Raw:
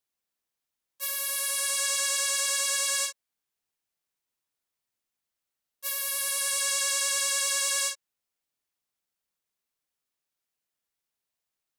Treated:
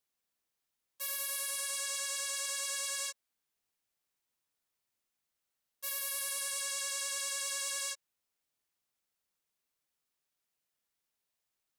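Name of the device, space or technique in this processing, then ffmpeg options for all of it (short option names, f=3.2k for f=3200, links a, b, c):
stacked limiters: -af "alimiter=limit=-20dB:level=0:latency=1:release=83,alimiter=limit=-24dB:level=0:latency=1:release=101"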